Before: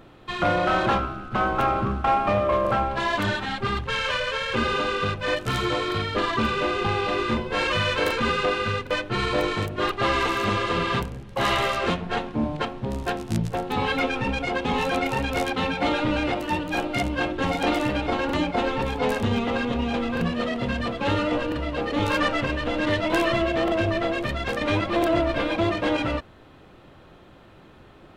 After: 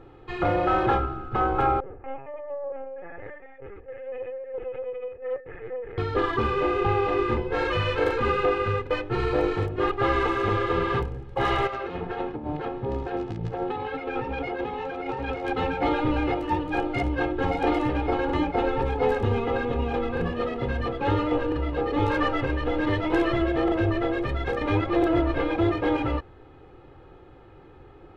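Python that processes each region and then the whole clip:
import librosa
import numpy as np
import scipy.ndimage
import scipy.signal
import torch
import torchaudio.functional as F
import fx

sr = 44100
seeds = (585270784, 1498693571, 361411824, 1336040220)

y = fx.chain(x, sr, fx.formant_cascade(vowel='e'),
    fx.lpc_vocoder(seeds[0], excitation='pitch_kept', order=10),
    fx.doppler_dist(depth_ms=0.35), at=(1.8, 5.98))
y = fx.chain(y, sr, fx.lowpass(hz=5300.0, slope=12),
    fx.low_shelf(hz=87.0, db=-11.0),
    fx.over_compress(threshold_db=-30.0, ratio=-1.0), at=(11.67, 15.48))
y = fx.lowpass(y, sr, hz=1100.0, slope=6)
y = y + 0.64 * np.pad(y, (int(2.4 * sr / 1000.0), 0))[:len(y)]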